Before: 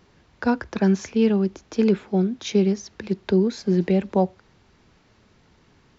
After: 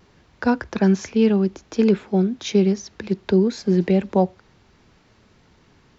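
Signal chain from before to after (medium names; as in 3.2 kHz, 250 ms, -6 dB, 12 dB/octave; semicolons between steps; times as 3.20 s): vibrato 0.62 Hz 12 cents; trim +2 dB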